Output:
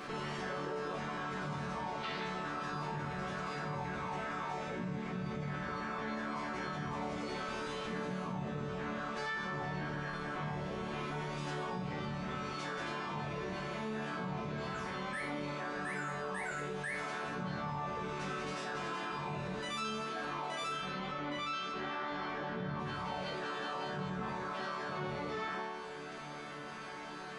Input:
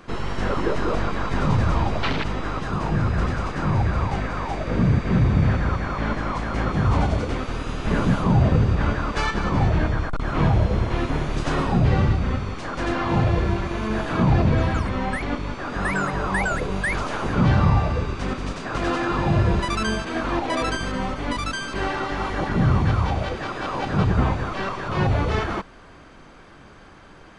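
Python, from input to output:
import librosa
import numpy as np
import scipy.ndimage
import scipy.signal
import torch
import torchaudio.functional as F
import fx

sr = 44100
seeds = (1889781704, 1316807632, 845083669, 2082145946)

y = fx.highpass(x, sr, hz=240.0, slope=6)
y = fx.rider(y, sr, range_db=10, speed_s=0.5)
y = fx.lowpass(y, sr, hz=4300.0, slope=12, at=(20.68, 22.79))
y = fx.resonator_bank(y, sr, root=50, chord='major', decay_s=0.59)
y = fx.env_flatten(y, sr, amount_pct=70)
y = F.gain(torch.from_numpy(y), 1.0).numpy()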